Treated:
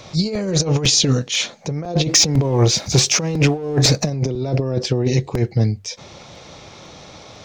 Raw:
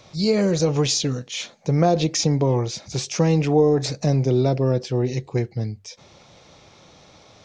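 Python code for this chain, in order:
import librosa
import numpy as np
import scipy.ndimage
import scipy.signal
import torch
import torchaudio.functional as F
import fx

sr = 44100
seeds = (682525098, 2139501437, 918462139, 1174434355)

y = fx.over_compress(x, sr, threshold_db=-23.0, ratio=-0.5)
y = fx.leveller(y, sr, passes=1, at=(2.09, 4.1))
y = fx.buffer_crackle(y, sr, first_s=0.35, period_s=0.5, block=128, kind='repeat')
y = F.gain(torch.from_numpy(y), 5.5).numpy()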